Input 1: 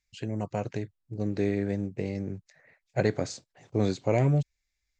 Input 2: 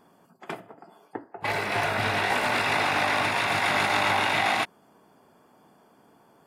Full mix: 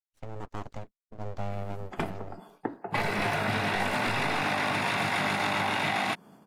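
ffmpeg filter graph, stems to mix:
ffmpeg -i stem1.wav -i stem2.wav -filter_complex "[0:a]highpass=180,equalizer=frequency=3200:width=0.42:gain=-8.5,aeval=exprs='abs(val(0))':channel_layout=same,volume=-2dB[link_01];[1:a]equalizer=frequency=180:width=1.3:gain=9,adelay=1500,volume=2.5dB[link_02];[link_01][link_02]amix=inputs=2:normalize=0,agate=range=-33dB:threshold=-47dB:ratio=3:detection=peak,acompressor=threshold=-25dB:ratio=6" out.wav

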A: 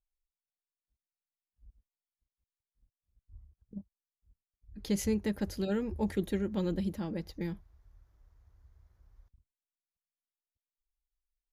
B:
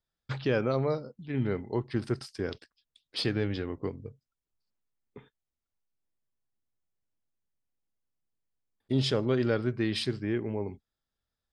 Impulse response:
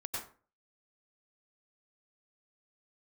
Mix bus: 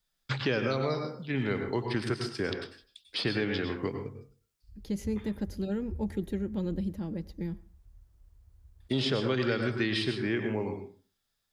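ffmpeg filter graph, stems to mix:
-filter_complex "[0:a]volume=-6.5dB,asplit=2[link_01][link_02];[link_02]volume=-20dB[link_03];[1:a]highpass=120,tiltshelf=frequency=1100:gain=-8,volume=0dB,asplit=3[link_04][link_05][link_06];[link_05]volume=-3dB[link_07];[link_06]apad=whole_len=508340[link_08];[link_01][link_08]sidechaincompress=threshold=-42dB:ratio=8:attack=47:release=1470[link_09];[2:a]atrim=start_sample=2205[link_10];[link_03][link_07]amix=inputs=2:normalize=0[link_11];[link_11][link_10]afir=irnorm=-1:irlink=0[link_12];[link_09][link_04][link_12]amix=inputs=3:normalize=0,acrossover=split=440|1900|4100[link_13][link_14][link_15][link_16];[link_13]acompressor=threshold=-36dB:ratio=4[link_17];[link_14]acompressor=threshold=-35dB:ratio=4[link_18];[link_15]acompressor=threshold=-37dB:ratio=4[link_19];[link_16]acompressor=threshold=-48dB:ratio=4[link_20];[link_17][link_18][link_19][link_20]amix=inputs=4:normalize=0,lowshelf=frequency=390:gain=10"

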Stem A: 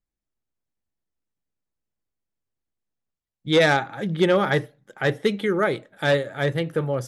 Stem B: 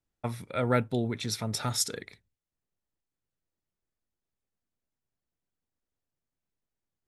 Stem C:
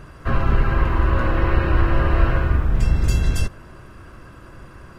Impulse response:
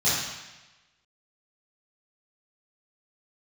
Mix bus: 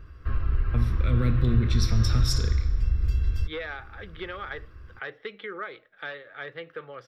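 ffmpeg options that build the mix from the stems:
-filter_complex "[0:a]acrossover=split=540 3800:gain=0.0891 1 0.0708[link_01][link_02][link_03];[link_01][link_02][link_03]amix=inputs=3:normalize=0,acrossover=split=1400|3400[link_04][link_05][link_06];[link_04]acompressor=threshold=-30dB:ratio=4[link_07];[link_05]acompressor=threshold=-38dB:ratio=4[link_08];[link_06]acompressor=threshold=-50dB:ratio=4[link_09];[link_07][link_08][link_09]amix=inputs=3:normalize=0,volume=-3.5dB[link_10];[1:a]equalizer=frequency=110:width_type=o:width=0.94:gain=12,acrossover=split=260|3000[link_11][link_12][link_13];[link_12]acompressor=threshold=-37dB:ratio=6[link_14];[link_11][link_14][link_13]amix=inputs=3:normalize=0,adelay=500,volume=1dB,asplit=2[link_15][link_16];[link_16]volume=-23dB[link_17];[2:a]lowshelf=frequency=110:width_type=q:width=1.5:gain=9.5,acompressor=threshold=-15dB:ratio=1.5,volume=-12dB[link_18];[3:a]atrim=start_sample=2205[link_19];[link_17][link_19]afir=irnorm=-1:irlink=0[link_20];[link_10][link_15][link_18][link_20]amix=inputs=4:normalize=0,superequalizer=8b=0.447:9b=0.398:15b=0.316:16b=0.251"

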